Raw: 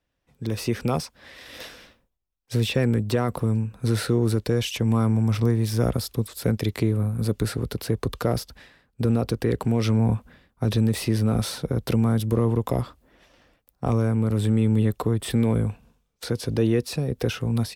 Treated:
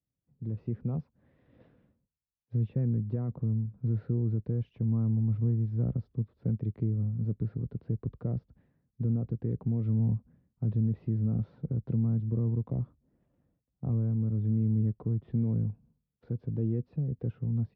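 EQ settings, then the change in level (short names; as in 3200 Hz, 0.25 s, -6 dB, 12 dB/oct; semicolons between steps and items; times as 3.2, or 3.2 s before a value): band-pass 140 Hz, Q 1.4; air absorption 270 m; -3.5 dB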